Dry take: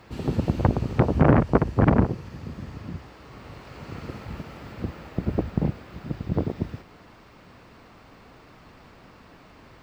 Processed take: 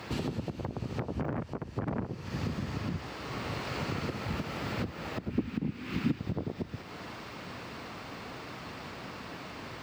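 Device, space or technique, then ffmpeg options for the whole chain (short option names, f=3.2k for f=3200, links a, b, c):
broadcast voice chain: -filter_complex "[0:a]highpass=85,deesser=0.95,acompressor=threshold=-34dB:ratio=4,equalizer=f=4.2k:t=o:w=2.3:g=4,alimiter=level_in=6dB:limit=-24dB:level=0:latency=1:release=432,volume=-6dB,asettb=1/sr,asplit=3[a][b][c];[a]atrim=end=5.304[d];[b]atrim=start=5.3:end=6.19,asetpts=PTS-STARTPTS,afade=t=in:d=0.004:c=qsin,afade=t=out:st=0.886:d=0.004:c=qsin,equalizer=f=250:t=o:w=0.67:g=11,equalizer=f=630:t=o:w=0.67:g=-10,equalizer=f=2.5k:t=o:w=0.67:g=6[e];[c]atrim=start=6.186[f];[d][e]acrossfade=d=0.004:c1=hsin:c2=qsin[g];[g][f]acrossfade=d=0.004:c1=qsin:c2=hsin,volume=7dB"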